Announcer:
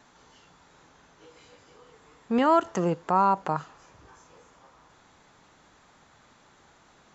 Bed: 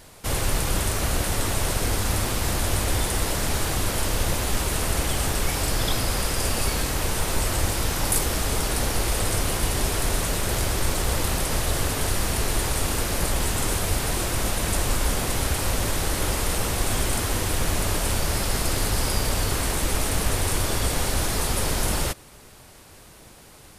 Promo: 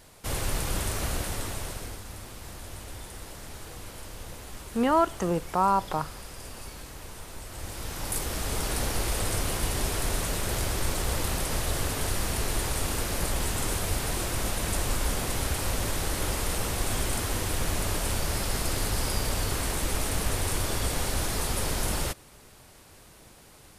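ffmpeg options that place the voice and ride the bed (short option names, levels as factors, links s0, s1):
-filter_complex "[0:a]adelay=2450,volume=0.841[s0];[1:a]volume=2.37,afade=t=out:st=1.04:d=0.99:silence=0.251189,afade=t=in:st=7.48:d=1.24:silence=0.223872[s1];[s0][s1]amix=inputs=2:normalize=0"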